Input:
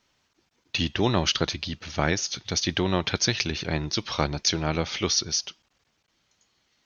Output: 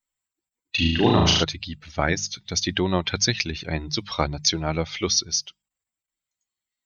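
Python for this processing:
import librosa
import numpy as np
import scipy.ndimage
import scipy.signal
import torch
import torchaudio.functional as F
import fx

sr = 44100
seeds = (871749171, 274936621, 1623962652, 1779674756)

y = fx.bin_expand(x, sr, power=1.5)
y = fx.hum_notches(y, sr, base_hz=50, count=4)
y = fx.room_flutter(y, sr, wall_m=6.3, rt60_s=0.85, at=(0.77, 1.42), fade=0.02)
y = F.gain(torch.from_numpy(y), 4.5).numpy()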